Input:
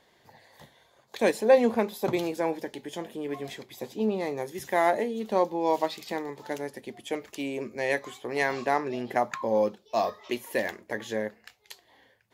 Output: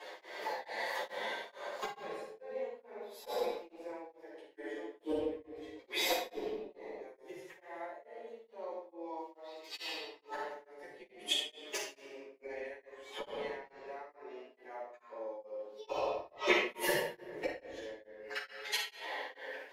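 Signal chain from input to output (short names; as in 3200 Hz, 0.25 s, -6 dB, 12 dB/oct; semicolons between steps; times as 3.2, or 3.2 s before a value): high shelf 5900 Hz -12 dB; notches 60/120/180/240/300/360/420/480/540/600 Hz; limiter -20 dBFS, peak gain reduction 11 dB; Chebyshev high-pass 410 Hz, order 3; flipped gate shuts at -34 dBFS, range -35 dB; time stretch by phase-locked vocoder 1.6×; shoebox room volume 750 m³, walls mixed, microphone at 9.9 m; beating tremolo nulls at 2.3 Hz; gain +7 dB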